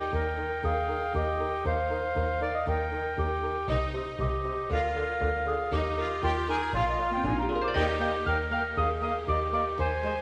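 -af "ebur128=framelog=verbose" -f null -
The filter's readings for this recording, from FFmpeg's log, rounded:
Integrated loudness:
  I:         -28.9 LUFS
  Threshold: -38.9 LUFS
Loudness range:
  LRA:         1.9 LU
  Threshold: -48.9 LUFS
  LRA low:   -29.8 LUFS
  LRA high:  -28.0 LUFS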